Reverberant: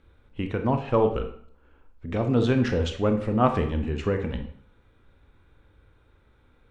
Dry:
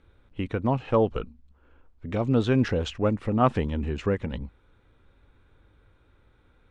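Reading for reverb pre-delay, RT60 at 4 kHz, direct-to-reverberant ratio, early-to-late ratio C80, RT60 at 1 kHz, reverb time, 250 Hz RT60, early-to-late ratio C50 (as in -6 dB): 25 ms, 0.45 s, 5.5 dB, 12.5 dB, 0.60 s, 0.55 s, 0.60 s, 8.5 dB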